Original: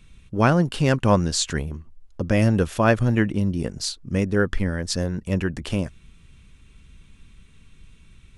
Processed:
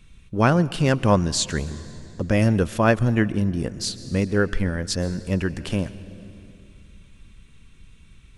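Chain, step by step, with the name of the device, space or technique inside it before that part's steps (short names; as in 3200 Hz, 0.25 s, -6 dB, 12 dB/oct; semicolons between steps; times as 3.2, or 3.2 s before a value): compressed reverb return (on a send at -11 dB: reverb RT60 2.1 s, pre-delay 0.112 s + compressor 6:1, threshold -24 dBFS, peak gain reduction 12.5 dB)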